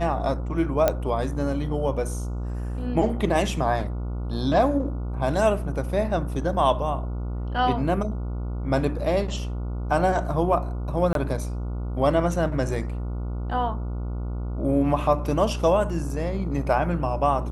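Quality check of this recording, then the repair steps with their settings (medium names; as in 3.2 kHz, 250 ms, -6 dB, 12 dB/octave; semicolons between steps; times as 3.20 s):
buzz 60 Hz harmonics 24 -29 dBFS
0.88 s: pop -7 dBFS
11.13–11.15 s: dropout 22 ms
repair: de-click; de-hum 60 Hz, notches 24; interpolate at 11.13 s, 22 ms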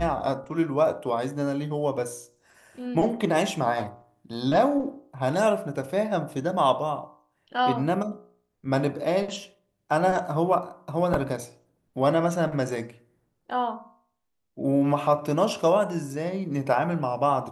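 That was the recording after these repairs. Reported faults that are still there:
nothing left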